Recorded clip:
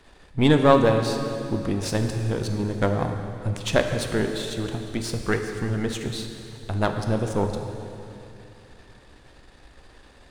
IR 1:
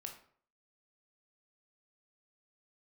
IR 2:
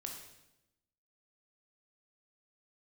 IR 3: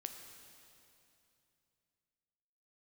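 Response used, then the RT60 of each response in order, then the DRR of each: 3; 0.55, 0.90, 2.8 s; 2.5, 1.5, 5.0 dB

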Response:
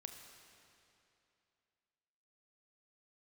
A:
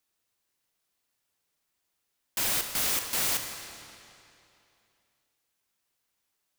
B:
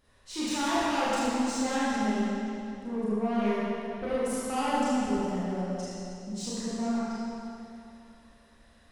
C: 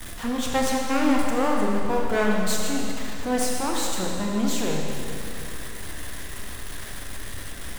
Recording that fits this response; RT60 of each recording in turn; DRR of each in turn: A; 2.8, 2.8, 2.8 s; 4.5, -10.5, -1.5 dB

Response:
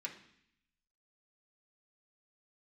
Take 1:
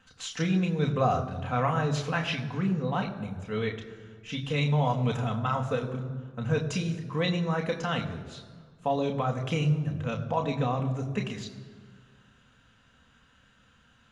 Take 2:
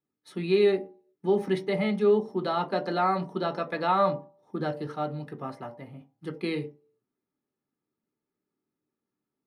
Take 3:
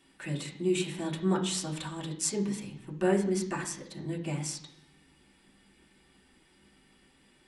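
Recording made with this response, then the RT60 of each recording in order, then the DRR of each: 3; 1.7, 0.45, 0.65 s; 2.5, 3.0, -3.0 dB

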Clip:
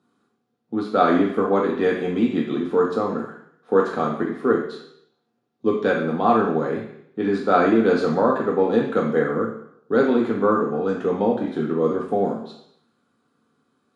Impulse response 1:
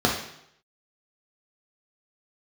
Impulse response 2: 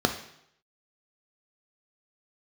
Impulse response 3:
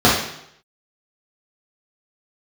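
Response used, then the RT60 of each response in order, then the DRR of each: 1; 0.75, 0.75, 0.75 s; -2.0, 5.5, -8.0 dB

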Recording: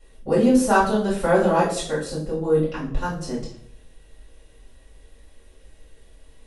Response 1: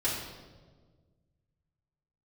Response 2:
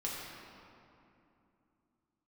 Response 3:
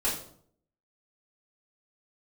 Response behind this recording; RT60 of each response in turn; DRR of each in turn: 3; 1.5, 2.8, 0.60 s; -9.5, -5.5, -9.0 dB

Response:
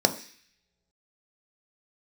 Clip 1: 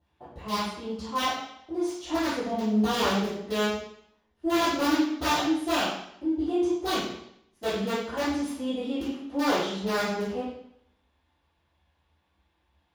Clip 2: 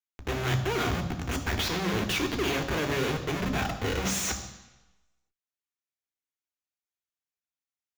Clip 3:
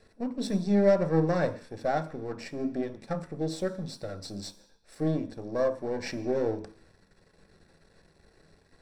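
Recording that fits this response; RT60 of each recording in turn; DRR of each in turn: 3; 0.70 s, 1.0 s, not exponential; -19.0, 5.5, 6.5 dB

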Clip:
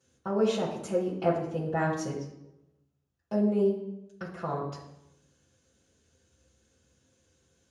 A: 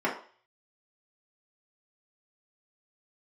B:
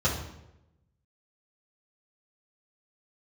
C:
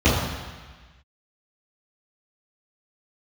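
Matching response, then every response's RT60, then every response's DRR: B; 0.45, 0.90, 1.4 s; -6.0, -8.5, -14.5 dB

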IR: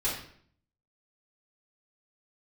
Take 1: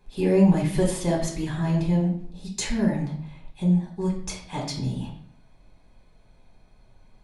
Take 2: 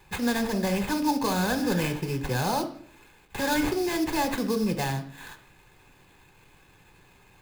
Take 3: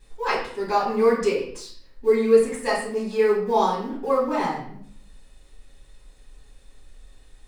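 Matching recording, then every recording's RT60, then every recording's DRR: 3; 0.60, 0.60, 0.60 s; -1.5, 8.5, -7.5 dB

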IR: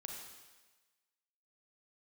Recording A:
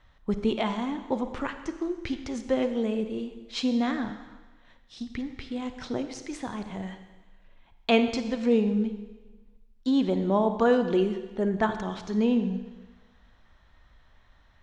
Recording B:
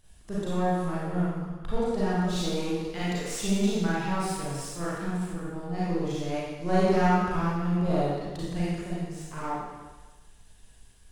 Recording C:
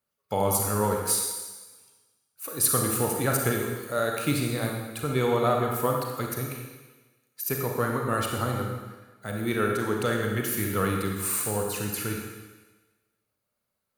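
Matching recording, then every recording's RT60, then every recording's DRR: C; 1.3, 1.2, 1.3 s; 8.5, -9.0, 0.5 dB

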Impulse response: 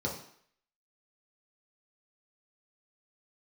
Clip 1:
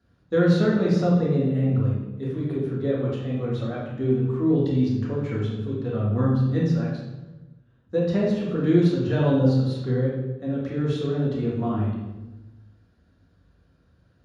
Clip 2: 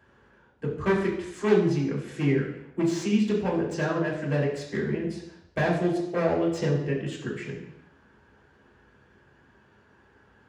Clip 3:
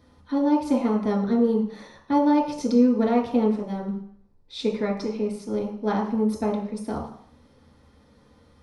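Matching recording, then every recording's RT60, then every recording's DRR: 3; 1.1 s, not exponential, 0.60 s; -6.0, -4.5, -3.5 dB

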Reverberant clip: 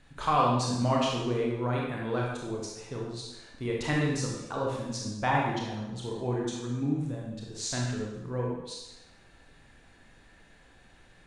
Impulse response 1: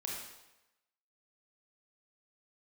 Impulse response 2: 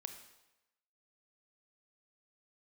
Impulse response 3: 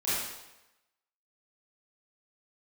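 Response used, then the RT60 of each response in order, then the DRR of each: 1; 1.0, 1.0, 1.0 s; -2.5, 7.0, -12.5 dB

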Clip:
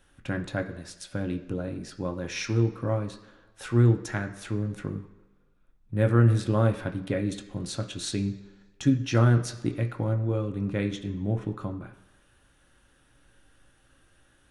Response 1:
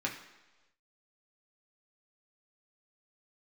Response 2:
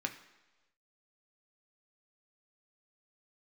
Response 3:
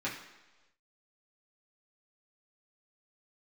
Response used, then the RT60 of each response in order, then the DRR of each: 2; not exponential, not exponential, not exponential; -2.0, 4.0, -7.5 dB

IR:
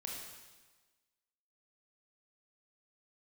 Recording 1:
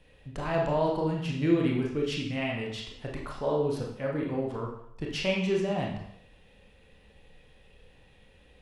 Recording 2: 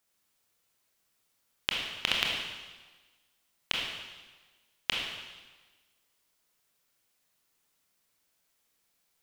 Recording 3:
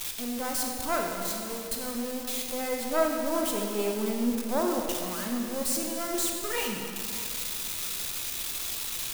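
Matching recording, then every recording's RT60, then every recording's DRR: 2; 0.70, 1.3, 2.6 s; -1.5, -2.0, 1.0 dB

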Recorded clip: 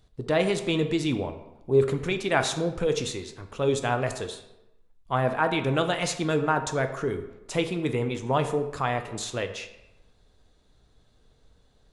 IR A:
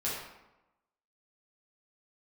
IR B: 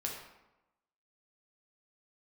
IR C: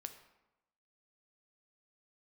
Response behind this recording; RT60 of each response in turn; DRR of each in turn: C; 0.95, 0.95, 0.95 s; -8.5, -1.5, 7.0 dB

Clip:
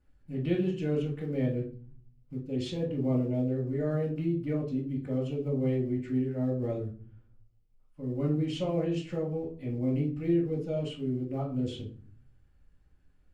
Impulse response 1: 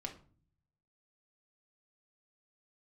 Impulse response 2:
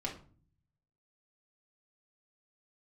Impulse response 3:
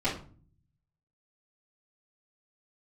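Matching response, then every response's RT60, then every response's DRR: 3; 0.45, 0.45, 0.45 s; 0.5, -3.5, -12.5 dB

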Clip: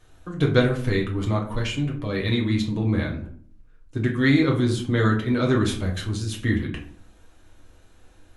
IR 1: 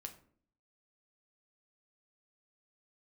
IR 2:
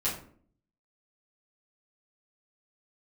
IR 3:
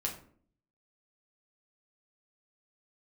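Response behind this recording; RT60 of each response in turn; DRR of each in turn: 3; 0.55, 0.55, 0.55 s; 4.5, -9.5, -1.0 dB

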